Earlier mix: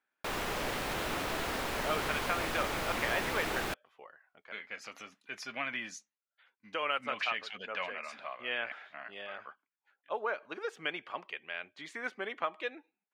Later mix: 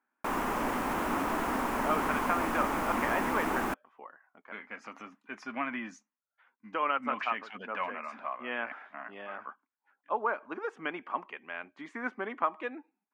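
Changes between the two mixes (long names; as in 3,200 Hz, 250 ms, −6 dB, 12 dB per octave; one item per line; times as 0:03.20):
speech: add high-frequency loss of the air 83 metres
master: add octave-band graphic EQ 125/250/500/1,000/4,000 Hz −6/+12/−3/+9/−11 dB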